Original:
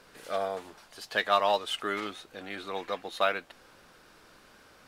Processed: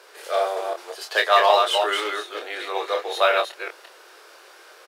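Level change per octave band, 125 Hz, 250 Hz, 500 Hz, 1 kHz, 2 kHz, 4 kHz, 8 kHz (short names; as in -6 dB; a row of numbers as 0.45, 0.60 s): under -25 dB, +0.5 dB, +9.5 dB, +9.5 dB, +9.0 dB, +10.0 dB, +10.0 dB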